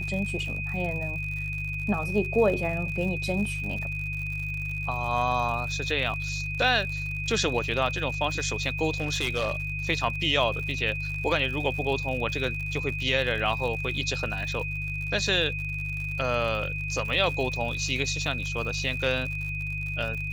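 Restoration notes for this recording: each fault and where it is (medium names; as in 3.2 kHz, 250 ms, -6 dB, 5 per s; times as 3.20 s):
crackle 90 per s -34 dBFS
hum 50 Hz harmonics 3 -34 dBFS
whine 2.5 kHz -32 dBFS
9.00–9.60 s: clipped -22 dBFS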